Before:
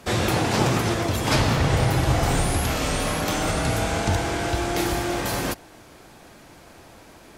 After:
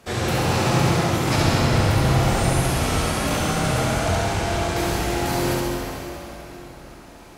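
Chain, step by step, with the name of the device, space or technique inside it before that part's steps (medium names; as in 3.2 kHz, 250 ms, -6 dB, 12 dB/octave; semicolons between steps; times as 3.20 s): tunnel (flutter echo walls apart 11.7 m, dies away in 0.81 s; reverberation RT60 3.9 s, pre-delay 12 ms, DRR -3.5 dB); trim -5 dB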